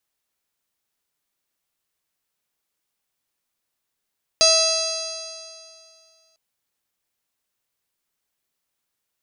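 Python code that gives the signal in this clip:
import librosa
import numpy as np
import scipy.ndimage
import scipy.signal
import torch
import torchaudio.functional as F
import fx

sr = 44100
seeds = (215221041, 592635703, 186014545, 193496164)

y = fx.additive_stiff(sr, length_s=1.95, hz=644.0, level_db=-18.0, upper_db=(-9.5, -18.5, -7.0, -13.0, -3, 3.5, -5, 0, -17.5, -20.0, -11.0), decay_s=2.34, stiffness=0.0027)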